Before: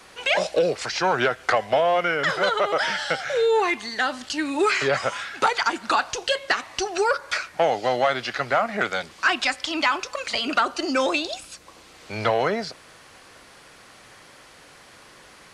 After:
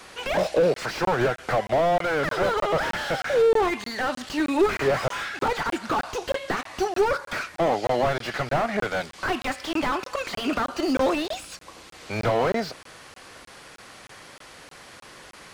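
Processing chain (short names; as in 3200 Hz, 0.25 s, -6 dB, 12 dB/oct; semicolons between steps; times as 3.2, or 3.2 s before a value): crackling interface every 0.31 s, samples 1024, zero, from 0.74; slew limiter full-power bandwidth 56 Hz; gain +3 dB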